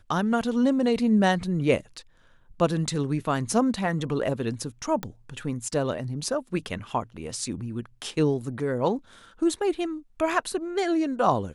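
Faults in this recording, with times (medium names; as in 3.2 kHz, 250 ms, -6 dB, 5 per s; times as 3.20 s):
5.03 s: pop -17 dBFS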